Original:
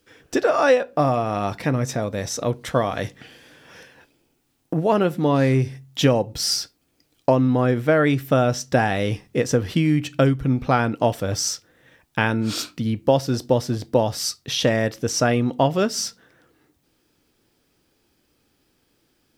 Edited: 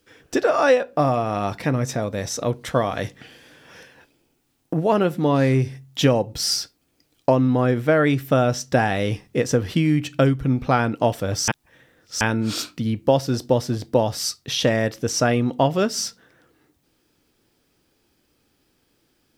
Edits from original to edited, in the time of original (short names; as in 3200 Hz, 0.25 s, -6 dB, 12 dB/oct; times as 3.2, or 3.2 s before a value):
11.48–12.21 reverse